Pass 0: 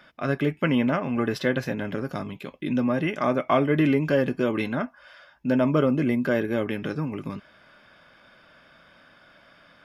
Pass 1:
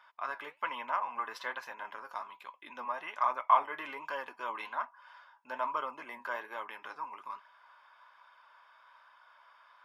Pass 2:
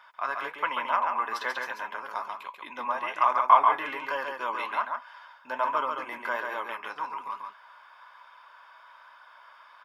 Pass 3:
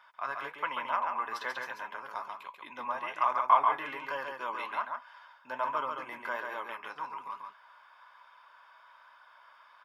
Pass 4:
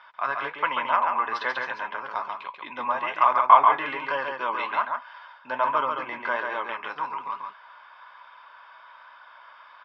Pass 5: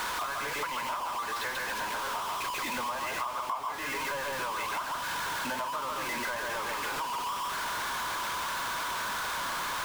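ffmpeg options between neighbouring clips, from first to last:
-af "highpass=f=980:t=q:w=10,flanger=delay=0.3:depth=9.3:regen=75:speed=1.2:shape=sinusoidal,volume=0.422"
-af "aecho=1:1:139:0.596,volume=2.11"
-af "equalizer=f=130:t=o:w=0.47:g=9.5,volume=0.562"
-af "lowpass=f=4600:w=0.5412,lowpass=f=4600:w=1.3066,volume=2.66"
-af "aeval=exprs='val(0)+0.5*0.126*sgn(val(0))':c=same,acompressor=threshold=0.0708:ratio=5,volume=0.355"

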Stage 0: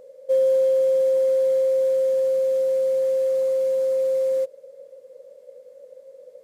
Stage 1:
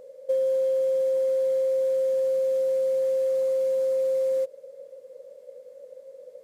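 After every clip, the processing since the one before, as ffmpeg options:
-af "acompressor=threshold=0.0794:ratio=6"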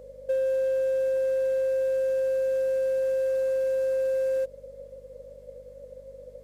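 -filter_complex "[0:a]aeval=exprs='val(0)+0.002*(sin(2*PI*50*n/s)+sin(2*PI*2*50*n/s)/2+sin(2*PI*3*50*n/s)/3+sin(2*PI*4*50*n/s)/4+sin(2*PI*5*50*n/s)/5)':c=same,asplit=2[s0][s1];[s1]volume=26.6,asoftclip=hard,volume=0.0376,volume=0.501[s2];[s0][s2]amix=inputs=2:normalize=0,volume=0.668"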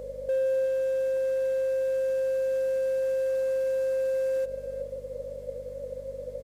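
-af "alimiter=level_in=1.88:limit=0.0631:level=0:latency=1:release=70,volume=0.531,aecho=1:1:372:0.178,volume=2.37"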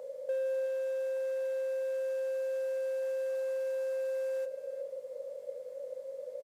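-filter_complex "[0:a]highpass=f=620:t=q:w=1.5,asplit=2[s0][s1];[s1]adelay=33,volume=0.251[s2];[s0][s2]amix=inputs=2:normalize=0,volume=0.501"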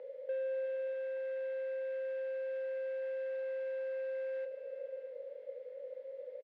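-af "highpass=f=270:w=0.5412,highpass=f=270:w=1.3066,equalizer=f=420:t=q:w=4:g=3,equalizer=f=660:t=q:w=4:g=-9,equalizer=f=1100:t=q:w=4:g=-9,equalizer=f=2000:t=q:w=4:g=6,lowpass=f=3300:w=0.5412,lowpass=f=3300:w=1.3066,aecho=1:1:647:0.211,volume=0.794"

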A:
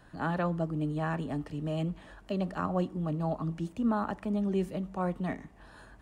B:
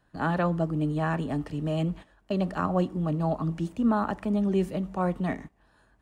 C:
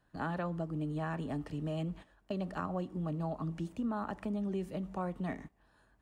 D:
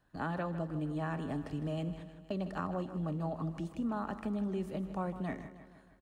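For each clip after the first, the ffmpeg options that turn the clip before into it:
-af "agate=range=0.178:threshold=0.00631:ratio=16:detection=peak,volume=1.68"
-af "acompressor=threshold=0.0355:ratio=3,volume=0.562"
-af "aecho=1:1:156|312|468|624|780|936:0.237|0.133|0.0744|0.0416|0.0233|0.0131"

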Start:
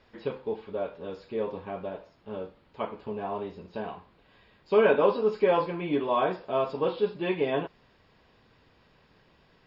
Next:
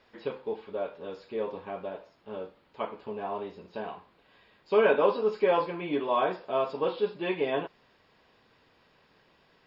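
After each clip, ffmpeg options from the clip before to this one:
-af "lowshelf=f=170:g=-11"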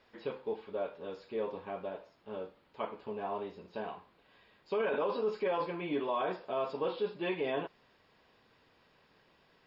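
-af "alimiter=limit=0.0841:level=0:latency=1:release=17,volume=0.708"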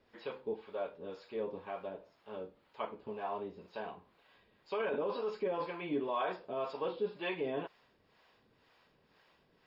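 -filter_complex "[0:a]acrossover=split=520[s0][s1];[s0]aeval=exprs='val(0)*(1-0.7/2+0.7/2*cos(2*PI*2*n/s))':c=same[s2];[s1]aeval=exprs='val(0)*(1-0.7/2-0.7/2*cos(2*PI*2*n/s))':c=same[s3];[s2][s3]amix=inputs=2:normalize=0,volume=1.12"

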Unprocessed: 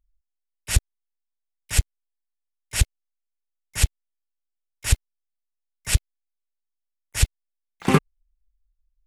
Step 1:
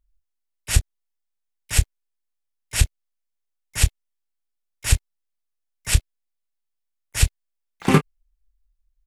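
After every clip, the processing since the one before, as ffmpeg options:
-filter_complex "[0:a]asplit=2[s0][s1];[s1]adelay=26,volume=0.282[s2];[s0][s2]amix=inputs=2:normalize=0,volume=1.19"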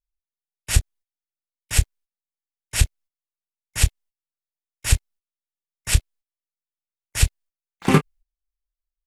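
-af "agate=range=0.112:threshold=0.00631:ratio=16:detection=peak"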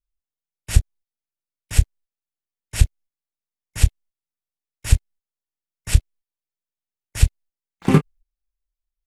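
-af "lowshelf=f=480:g=8.5,volume=0.562"

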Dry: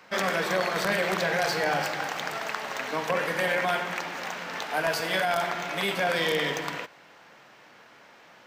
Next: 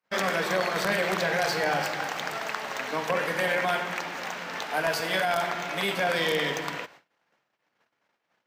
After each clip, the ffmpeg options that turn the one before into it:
-af "agate=range=0.0178:threshold=0.00355:ratio=16:detection=peak"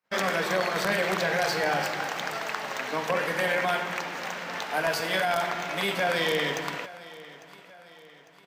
-af "aecho=1:1:851|1702|2553|3404:0.112|0.0539|0.0259|0.0124"

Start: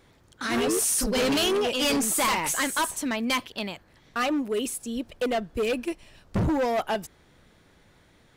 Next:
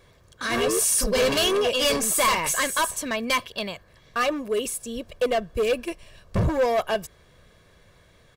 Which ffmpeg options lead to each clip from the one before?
-af "aecho=1:1:1.8:0.53,volume=1.19"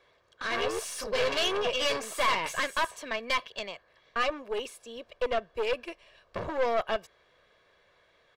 -filter_complex "[0:a]acrossover=split=380 4900:gain=0.141 1 0.141[s0][s1][s2];[s0][s1][s2]amix=inputs=3:normalize=0,aeval=exprs='(tanh(7.94*val(0)+0.75)-tanh(0.75))/7.94':c=same"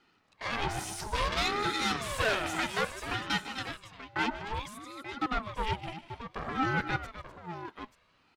-af "aecho=1:1:150|252|885:0.178|0.237|0.282,aeval=exprs='val(0)*sin(2*PI*580*n/s+580*0.45/0.59*sin(2*PI*0.59*n/s))':c=same"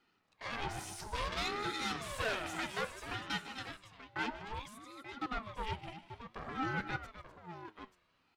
-af "flanger=delay=3.9:depth=8.5:regen=86:speed=0.43:shape=triangular,volume=0.75"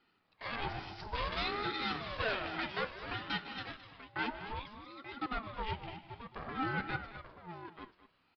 -af "aecho=1:1:214:0.188,aresample=11025,aresample=44100,volume=1.12"

